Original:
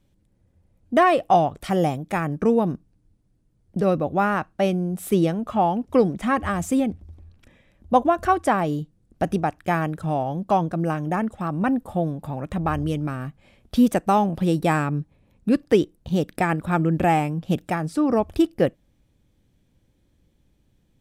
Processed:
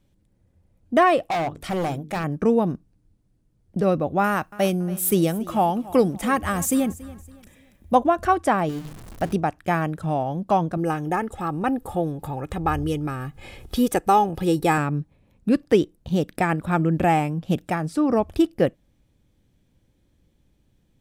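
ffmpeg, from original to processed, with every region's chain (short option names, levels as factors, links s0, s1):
-filter_complex "[0:a]asettb=1/sr,asplit=3[s0][s1][s2];[s0]atrim=end=1.234[s3];[s1]atrim=start=1.23:end=2.24,asetpts=PTS-STARTPTS,afade=t=in:d=0.004:c=qsin,afade=t=out:st=1.006:d=0.004:c=qsin,bandreject=f=50:t=h:w=6,bandreject=f=100:t=h:w=6,bandreject=f=150:t=h:w=6,bandreject=f=200:t=h:w=6,bandreject=f=250:t=h:w=6,bandreject=f=300:t=h:w=6,bandreject=f=350:t=h:w=6,bandreject=f=400:t=h:w=6,bandreject=f=450:t=h:w=6,volume=11.9,asoftclip=hard,volume=0.0841[s4];[s2]atrim=start=2.236[s5];[s3][s4]acrossfade=d=0.004:c1=hsin:c2=qsin[s6];[s6][s5]acrossfade=d=0.004:c1=qsin:c2=hsin,asettb=1/sr,asplit=3[s7][s8][s9];[s7]atrim=end=4.244[s10];[s8]atrim=start=4.24:end=7.95,asetpts=PTS-STARTPTS,afade=t=in:d=0.004:c=qsin,afade=t=out:st=3.706:d=0.004:c=qsin,aemphasis=mode=production:type=50fm,aecho=1:1:281|562|843:0.112|0.0393|0.0137,atrim=end_sample=163611[s11];[s9]atrim=start=7.946[s12];[s10][s11]acrossfade=d=0.004:c1=hsin:c2=qsin[s13];[s13][s12]acrossfade=d=0.004:c1=qsin:c2=hsin,asettb=1/sr,asplit=3[s14][s15][s16];[s14]atrim=end=8.694[s17];[s15]atrim=start=8.69:end=9.33,asetpts=PTS-STARTPTS,afade=t=in:d=0.004:c=qsin,afade=t=out:st=0.636:d=0.004:c=qsin,aeval=exprs='val(0)+0.5*0.0211*sgn(val(0))':c=same,equalizer=f=320:w=0.46:g=-3,bandreject=f=50:t=h:w=6,bandreject=f=100:t=h:w=6,bandreject=f=150:t=h:w=6,bandreject=f=200:t=h:w=6,bandreject=f=250:t=h:w=6,bandreject=f=300:t=h:w=6,bandreject=f=350:t=h:w=6,bandreject=f=400:t=h:w=6,bandreject=f=450:t=h:w=6[s18];[s16]atrim=start=9.326[s19];[s17][s18]acrossfade=d=0.004:c1=hsin:c2=qsin[s20];[s20][s19]acrossfade=d=0.004:c1=qsin:c2=hsin,asettb=1/sr,asplit=3[s21][s22][s23];[s21]atrim=end=10.774[s24];[s22]atrim=start=10.77:end=14.78,asetpts=PTS-STARTPTS,afade=t=in:d=0.004:c=qsin,afade=t=out:st=4.006:d=0.004:c=qsin,highshelf=f=8600:g=6.5,aecho=1:1:2.4:0.53,atrim=end_sample=176841,acompressor=mode=upward:threshold=0.0447:ratio=2.5:attack=3.2:release=140:knee=2.83:detection=peak[s25];[s23]atrim=start=14.776[s26];[s24][s25]acrossfade=d=0.004:c1=hsin:c2=qsin[s27];[s27][s26]acrossfade=d=0.004:c1=qsin:c2=hsin"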